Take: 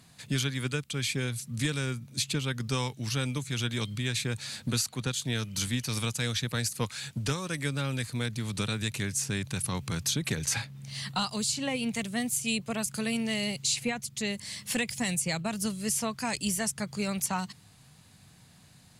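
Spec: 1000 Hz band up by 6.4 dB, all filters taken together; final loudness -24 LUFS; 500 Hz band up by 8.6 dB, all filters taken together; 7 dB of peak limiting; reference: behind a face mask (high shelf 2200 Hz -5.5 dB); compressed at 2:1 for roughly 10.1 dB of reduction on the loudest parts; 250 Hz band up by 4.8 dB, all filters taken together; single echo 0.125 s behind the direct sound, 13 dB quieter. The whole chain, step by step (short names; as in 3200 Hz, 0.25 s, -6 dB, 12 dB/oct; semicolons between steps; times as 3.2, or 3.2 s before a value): bell 250 Hz +4 dB; bell 500 Hz +8 dB; bell 1000 Hz +6.5 dB; compressor 2:1, threshold -39 dBFS; limiter -27.5 dBFS; high shelf 2200 Hz -5.5 dB; echo 0.125 s -13 dB; gain +15 dB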